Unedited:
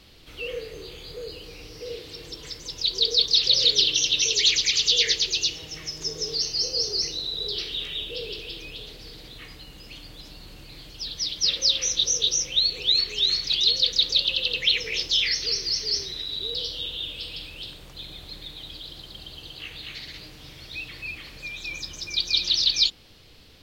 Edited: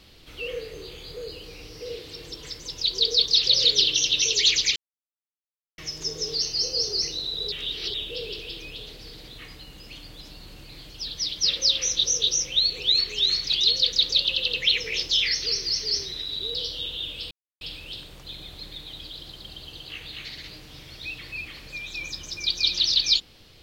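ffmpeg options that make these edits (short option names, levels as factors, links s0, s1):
-filter_complex "[0:a]asplit=6[s0][s1][s2][s3][s4][s5];[s0]atrim=end=4.76,asetpts=PTS-STARTPTS,afade=t=out:st=4.756:d=0.004:c=hsin[s6];[s1]atrim=start=4.76:end=5.78,asetpts=PTS-STARTPTS,volume=0[s7];[s2]atrim=start=5.78:end=7.522,asetpts=PTS-STARTPTS,afade=t=in:d=0.004:c=hsin[s8];[s3]atrim=start=7.518:end=7.942,asetpts=PTS-STARTPTS,areverse[s9];[s4]atrim=start=7.938:end=17.31,asetpts=PTS-STARTPTS,afade=t=out:st=9.368:d=0.004:c=hsin,apad=pad_dur=0.3[s10];[s5]atrim=start=17.31,asetpts=PTS-STARTPTS,afade=t=in:d=0.004:c=hsin[s11];[s6][s7][s8]concat=n=3:v=0:a=1[s12];[s12][s9]acrossfade=d=0.004:c1=hsin:c2=hsin[s13];[s10][s11]concat=n=2:v=0:a=1[s14];[s13][s14]acrossfade=d=0.004:c1=hsin:c2=hsin"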